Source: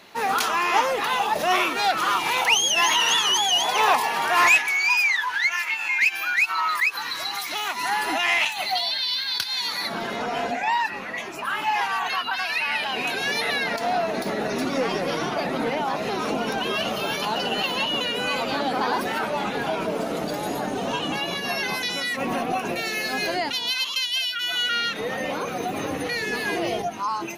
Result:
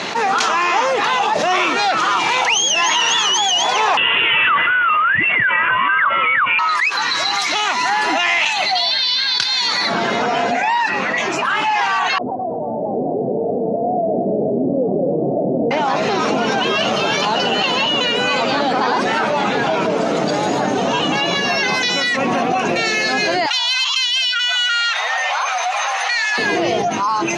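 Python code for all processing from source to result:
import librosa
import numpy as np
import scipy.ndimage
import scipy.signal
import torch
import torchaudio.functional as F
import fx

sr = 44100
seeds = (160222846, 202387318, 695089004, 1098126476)

y = fx.chain(x, sr, fx.notch(hz=2900.0, q=24.0),
    fx.freq_invert(carrier_hz=3700),
    fx.env_flatten(amount_pct=50), at=(3.97, 6.59))
y = fx.chain(y, sr, fx.steep_lowpass(hz=660.0, slope=48),
    fx.echo_single(ms=228, db=-8.5), at=(12.18, 15.71))
y = fx.chain(y, sr, fx.steep_highpass(hz=700.0, slope=48),
    fx.transformer_sat(knee_hz=3200.0), at=(23.46, 26.38))
y = scipy.signal.sosfilt(scipy.signal.ellip(3, 1.0, 60, [110.0, 6900.0], 'bandpass', fs=sr, output='sos'), y)
y = fx.env_flatten(y, sr, amount_pct=70)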